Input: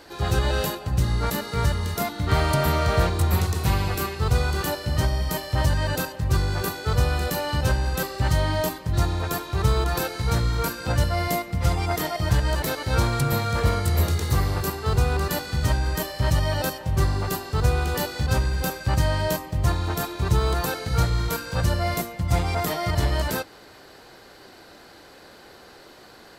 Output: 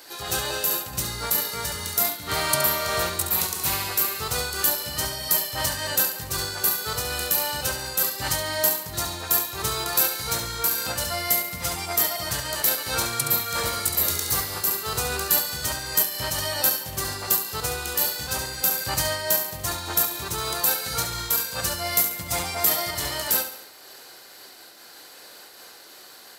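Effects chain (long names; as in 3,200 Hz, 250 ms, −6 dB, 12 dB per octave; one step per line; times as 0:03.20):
RIAA equalisation recording
flutter between parallel walls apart 11.9 metres, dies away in 0.54 s
amplitude modulation by smooth noise, depth 55%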